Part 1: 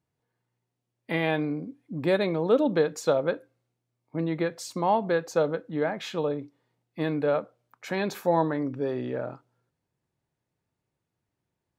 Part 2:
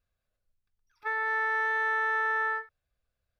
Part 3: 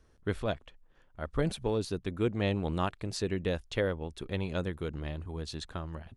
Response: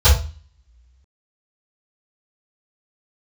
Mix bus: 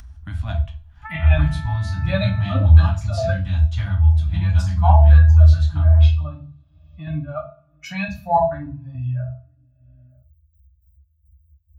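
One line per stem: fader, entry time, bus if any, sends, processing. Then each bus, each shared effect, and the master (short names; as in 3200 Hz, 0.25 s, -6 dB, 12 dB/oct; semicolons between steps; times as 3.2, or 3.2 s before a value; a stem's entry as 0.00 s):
+1.5 dB, 0.00 s, send -15.5 dB, per-bin expansion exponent 2; step gate ".x.x..xx" 104 bpm -12 dB; small resonant body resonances 580/2600 Hz, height 12 dB, ringing for 20 ms
0.0 dB, 0.00 s, no send, LPF 1900 Hz; compressor, threshold -36 dBFS, peak gain reduction 9.5 dB
-7.5 dB, 0.00 s, send -23 dB, AGC gain up to 12 dB; soft clip -5.5 dBFS, distortion -25 dB; auto duck -11 dB, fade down 0.25 s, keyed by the first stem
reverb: on, RT60 0.35 s, pre-delay 3 ms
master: elliptic band-stop 290–660 Hz, stop band 50 dB; upward compressor, threshold -28 dBFS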